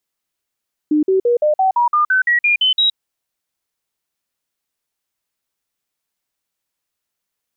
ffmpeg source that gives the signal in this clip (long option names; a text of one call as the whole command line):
ffmpeg -f lavfi -i "aevalsrc='0.282*clip(min(mod(t,0.17),0.12-mod(t,0.17))/0.005,0,1)*sin(2*PI*302*pow(2,floor(t/0.17)/3)*mod(t,0.17))':duration=2.04:sample_rate=44100" out.wav